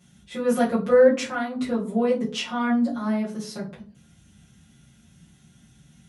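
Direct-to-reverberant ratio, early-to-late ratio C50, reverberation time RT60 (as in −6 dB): −9.0 dB, 10.0 dB, 0.40 s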